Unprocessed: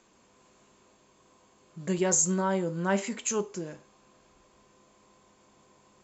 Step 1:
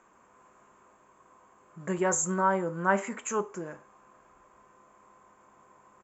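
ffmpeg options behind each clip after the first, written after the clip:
-af "firequalizer=gain_entry='entry(170,0);entry(1200,12);entry(2800,-3);entry(4200,-13);entry(7300,0)':delay=0.05:min_phase=1,volume=0.668"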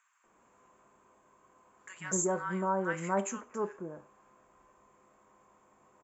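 -filter_complex "[0:a]acrossover=split=1300[s0][s1];[s0]adelay=240[s2];[s2][s1]amix=inputs=2:normalize=0,volume=0.668"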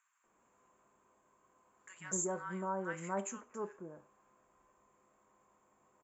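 -af "equalizer=f=7100:w=5.7:g=4,volume=0.447"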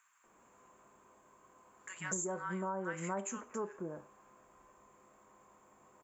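-af "acompressor=threshold=0.00708:ratio=5,volume=2.37"

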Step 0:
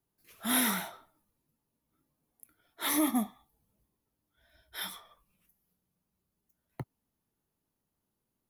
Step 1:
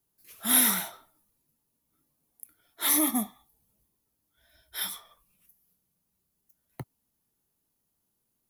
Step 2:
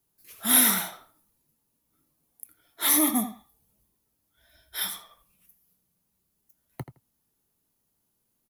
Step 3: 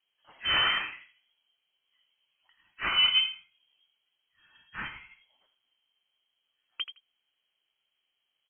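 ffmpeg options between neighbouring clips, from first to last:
-af "highshelf=f=4300:g=10"
-filter_complex "[0:a]asplit=2[s0][s1];[s1]adelay=82,lowpass=f=3600:p=1,volume=0.282,asplit=2[s2][s3];[s3]adelay=82,lowpass=f=3600:p=1,volume=0.16[s4];[s0][s2][s4]amix=inputs=3:normalize=0,volume=1.33"
-af "lowpass=f=2800:t=q:w=0.5098,lowpass=f=2800:t=q:w=0.6013,lowpass=f=2800:t=q:w=0.9,lowpass=f=2800:t=q:w=2.563,afreqshift=-3300,volume=1.26"

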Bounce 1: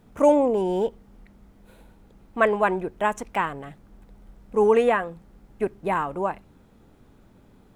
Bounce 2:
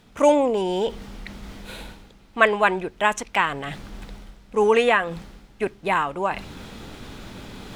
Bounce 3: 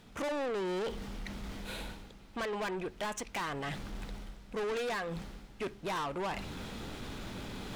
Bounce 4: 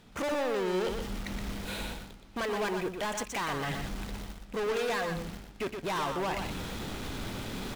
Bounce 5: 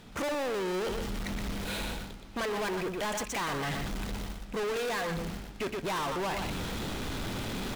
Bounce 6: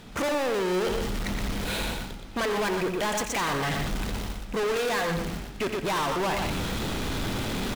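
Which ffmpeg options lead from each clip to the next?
-af "equalizer=f=3800:w=0.47:g=13.5,areverse,acompressor=mode=upward:threshold=0.0708:ratio=2.5,areverse,volume=0.891"
-af "alimiter=limit=0.237:level=0:latency=1:release=237,asoftclip=type=tanh:threshold=0.0316,volume=0.75"
-filter_complex "[0:a]asplit=2[s0][s1];[s1]acrusher=bits=6:mix=0:aa=0.000001,volume=0.531[s2];[s0][s2]amix=inputs=2:normalize=0,aecho=1:1:121:0.501"
-af "asoftclip=type=tanh:threshold=0.0168,volume=1.88"
-af "aecho=1:1:88:0.282,volume=1.78"

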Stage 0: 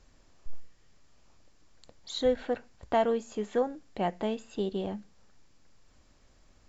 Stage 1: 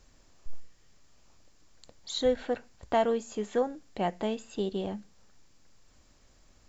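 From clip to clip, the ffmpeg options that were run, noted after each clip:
-af "highshelf=f=6400:g=8"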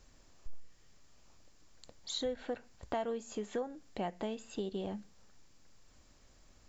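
-af "acompressor=threshold=0.02:ratio=3,volume=0.841"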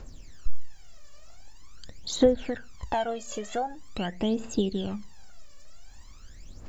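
-af "aphaser=in_gain=1:out_gain=1:delay=1.8:decay=0.77:speed=0.45:type=triangular,volume=2.11"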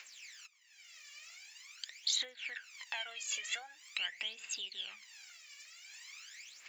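-af "acompressor=threshold=0.00891:ratio=2,highpass=f=2300:t=q:w=3.4,volume=1.78"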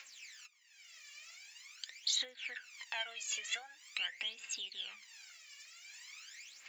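-af "flanger=delay=3.6:depth=1.1:regen=66:speed=0.46:shape=triangular,volume=1.5"

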